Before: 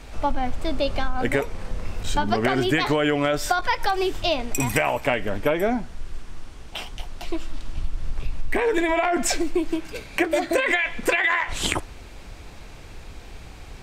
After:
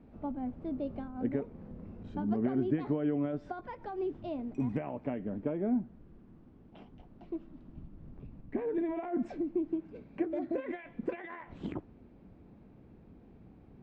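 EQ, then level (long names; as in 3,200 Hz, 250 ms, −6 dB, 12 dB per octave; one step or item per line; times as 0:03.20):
resonant band-pass 220 Hz, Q 1.8
high-frequency loss of the air 110 metres
−2.5 dB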